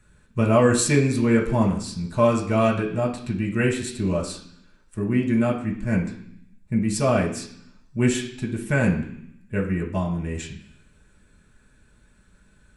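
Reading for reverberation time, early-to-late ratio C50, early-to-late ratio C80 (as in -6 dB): 0.65 s, 8.0 dB, 11.5 dB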